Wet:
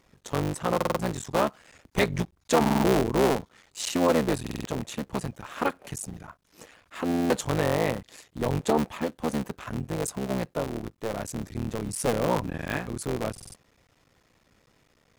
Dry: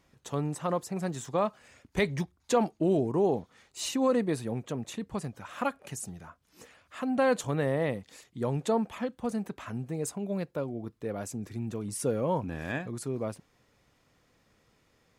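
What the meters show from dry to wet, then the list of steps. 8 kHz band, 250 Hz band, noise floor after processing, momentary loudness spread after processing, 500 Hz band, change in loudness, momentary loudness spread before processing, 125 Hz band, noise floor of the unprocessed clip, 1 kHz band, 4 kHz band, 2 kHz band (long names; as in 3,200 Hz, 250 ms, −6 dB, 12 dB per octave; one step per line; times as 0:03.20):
+4.5 dB, +3.0 dB, −66 dBFS, 12 LU, +2.5 dB, +3.5 dB, 11 LU, +3.0 dB, −70 dBFS, +5.0 dB, +6.5 dB, +5.0 dB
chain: sub-harmonics by changed cycles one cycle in 3, muted
buffer that repeats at 0:00.76/0:02.61/0:04.42/0:07.07/0:13.32, samples 2,048, times 4
level +5 dB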